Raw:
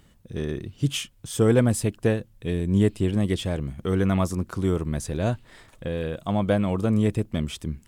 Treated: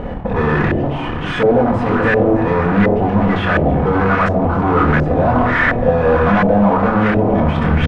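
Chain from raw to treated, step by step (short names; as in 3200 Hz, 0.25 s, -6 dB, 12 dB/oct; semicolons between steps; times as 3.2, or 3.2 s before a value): bell 2300 Hz +14 dB 2 oct; de-hum 82.58 Hz, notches 12; reverse; compressor 5:1, threshold -32 dBFS, peak gain reduction 17.5 dB; reverse; echo with dull and thin repeats by turns 0.145 s, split 840 Hz, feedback 73%, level -12.5 dB; fuzz box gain 55 dB, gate -56 dBFS; doubler 25 ms -7 dB; shoebox room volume 2500 m³, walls furnished, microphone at 1.9 m; LFO low-pass saw up 1.4 Hz 580–1700 Hz; gain -3 dB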